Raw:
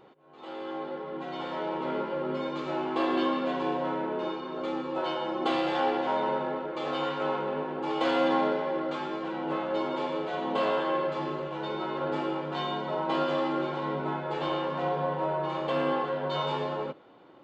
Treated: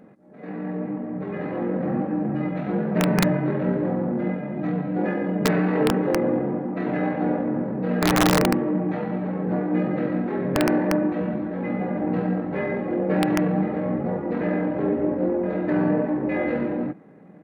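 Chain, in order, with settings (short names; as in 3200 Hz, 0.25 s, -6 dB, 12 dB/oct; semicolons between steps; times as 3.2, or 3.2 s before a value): resonant low shelf 210 Hz -10 dB, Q 1.5; pitch shift -10 st; wrapped overs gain 17 dB; gain +6 dB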